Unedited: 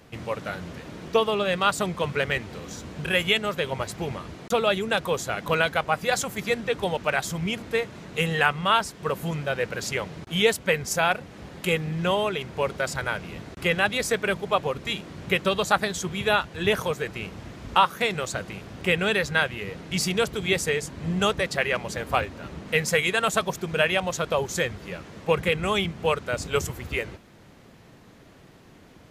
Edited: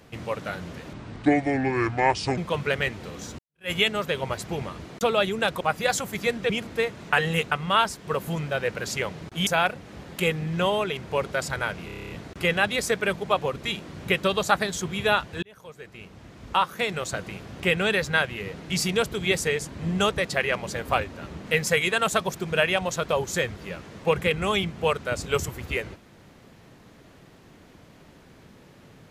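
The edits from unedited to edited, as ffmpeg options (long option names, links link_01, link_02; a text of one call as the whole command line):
ffmpeg -i in.wav -filter_complex "[0:a]asplit=18[link_01][link_02][link_03][link_04][link_05][link_06][link_07][link_08][link_09][link_10][link_11][link_12][link_13][link_14][link_15][link_16][link_17][link_18];[link_01]atrim=end=0.934[link_19];[link_02]atrim=start=0.93:end=1.87,asetpts=PTS-STARTPTS,asetrate=28665,aresample=44100,atrim=end_sample=63775,asetpts=PTS-STARTPTS[link_20];[link_03]atrim=start=1.866:end=2.88,asetpts=PTS-STARTPTS,afade=type=out:start_time=1.01:duration=0.004:curve=hsin[link_21];[link_04]atrim=start=2.88:end=5.102,asetpts=PTS-STARTPTS,afade=type=in:duration=0.32:curve=exp[link_22];[link_05]atrim=start=5.838:end=6.732[link_23];[link_06]atrim=start=7.448:end=8.082[link_24];[link_07]atrim=start=8.078:end=8.472,asetpts=PTS-STARTPTS,areverse[link_25];[link_08]atrim=start=8.468:end=10.422[link_26];[link_09]atrim=start=10.918:end=13.342[link_27];[link_10]atrim=start=13.308:end=13.342[link_28];[link_11]atrim=start=13.308:end=13.342[link_29];[link_12]atrim=start=13.308:end=13.342[link_30];[link_13]atrim=start=13.308:end=13.342[link_31];[link_14]atrim=start=13.308:end=13.342[link_32];[link_15]atrim=start=13.308:end=13.342[link_33];[link_16]atrim=start=13.308:end=13.342[link_34];[link_17]atrim=start=13.308:end=16.64,asetpts=PTS-STARTPTS,afade=type=out:start_time=3.328:duration=0.004:curve=hsin[link_35];[link_18]atrim=start=16.64,asetpts=PTS-STARTPTS,afade=type=in:duration=1.75[link_36];[link_19][link_20]acrossfade=duration=0.004:curve1=hsin:curve2=hsin[link_37];[link_21][link_22]concat=n=2:v=0:a=1[link_38];[link_37][link_38]acrossfade=duration=0.004:curve1=hsin:curve2=hsin[link_39];[link_39][link_23]acrossfade=duration=0.004:curve1=hsin:curve2=hsin[link_40];[link_40][link_24]acrossfade=duration=0.004:curve1=hsin:curve2=hsin[link_41];[link_41][link_25]acrossfade=duration=0.004:curve1=hsin:curve2=hsin[link_42];[link_42][link_26]acrossfade=duration=0.004:curve1=hsin:curve2=hsin[link_43];[link_43][link_27]acrossfade=duration=0.004:curve1=hsin:curve2=hsin[link_44];[link_44][link_28]acrossfade=duration=0.004:curve1=hsin:curve2=hsin[link_45];[link_45][link_29]acrossfade=duration=0.004:curve1=hsin:curve2=hsin[link_46];[link_46][link_30]acrossfade=duration=0.004:curve1=hsin:curve2=hsin[link_47];[link_47][link_31]acrossfade=duration=0.004:curve1=hsin:curve2=hsin[link_48];[link_48][link_32]acrossfade=duration=0.004:curve1=hsin:curve2=hsin[link_49];[link_49][link_33]acrossfade=duration=0.004:curve1=hsin:curve2=hsin[link_50];[link_50][link_34]acrossfade=duration=0.004:curve1=hsin:curve2=hsin[link_51];[link_35][link_36]concat=n=2:v=0:a=1[link_52];[link_51][link_52]acrossfade=duration=0.004:curve1=hsin:curve2=hsin" out.wav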